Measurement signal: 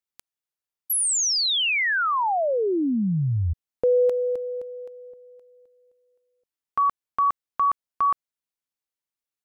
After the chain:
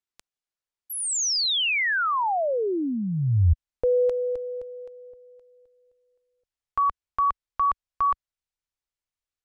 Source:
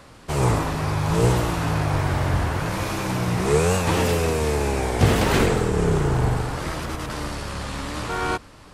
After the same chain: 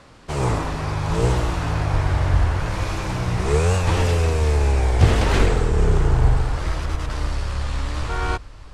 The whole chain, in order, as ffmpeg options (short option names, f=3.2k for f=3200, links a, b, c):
-af "lowpass=8.1k,asubboost=boost=7.5:cutoff=73,volume=-1dB"